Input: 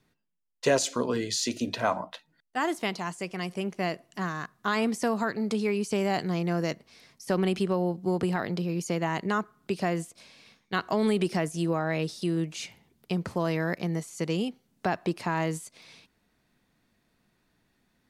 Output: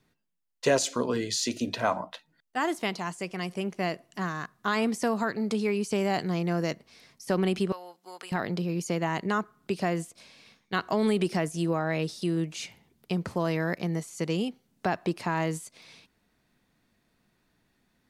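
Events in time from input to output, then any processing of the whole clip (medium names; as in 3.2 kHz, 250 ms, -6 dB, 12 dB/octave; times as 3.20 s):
7.72–8.32 s: high-pass 1.3 kHz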